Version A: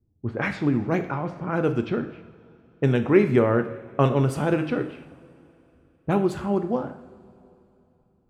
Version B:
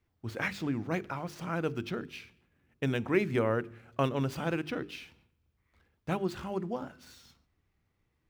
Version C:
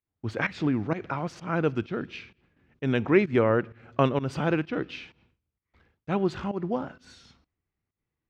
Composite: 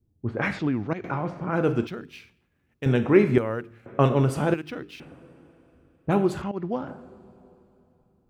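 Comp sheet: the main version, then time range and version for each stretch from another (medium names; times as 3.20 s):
A
0.59–1.04 s: from C
1.87–2.86 s: from B
3.38–3.86 s: from B
4.54–5.00 s: from B
6.42–6.88 s: from C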